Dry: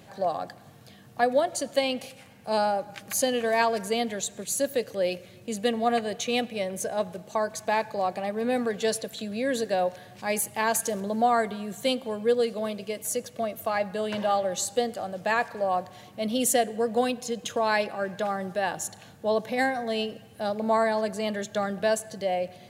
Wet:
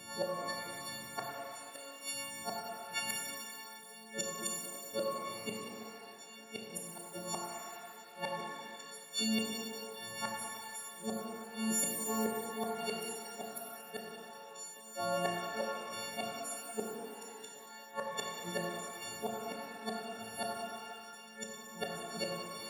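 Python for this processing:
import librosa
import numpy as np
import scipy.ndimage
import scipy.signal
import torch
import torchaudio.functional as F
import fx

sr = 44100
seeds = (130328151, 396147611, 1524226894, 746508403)

y = fx.freq_snap(x, sr, grid_st=4)
y = fx.gate_flip(y, sr, shuts_db=-20.0, range_db=-29)
y = scipy.signal.sosfilt(scipy.signal.butter(2, 110.0, 'highpass', fs=sr, output='sos'), y)
y = fx.spec_freeze(y, sr, seeds[0], at_s=7.4, hold_s=0.68)
y = fx.rev_shimmer(y, sr, seeds[1], rt60_s=2.1, semitones=12, shimmer_db=-8, drr_db=-1.0)
y = y * 10.0 ** (-3.5 / 20.0)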